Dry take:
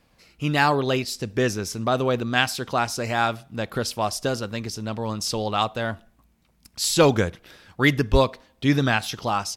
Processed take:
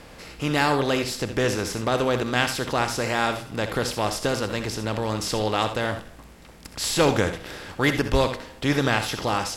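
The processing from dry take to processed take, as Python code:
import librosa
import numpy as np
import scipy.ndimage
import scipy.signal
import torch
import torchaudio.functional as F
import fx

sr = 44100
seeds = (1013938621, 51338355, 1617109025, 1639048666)

y = fx.bin_compress(x, sr, power=0.6)
y = fx.echo_multitap(y, sr, ms=(65, 81), db=(-11.0, -13.5))
y = y * 10.0 ** (-5.0 / 20.0)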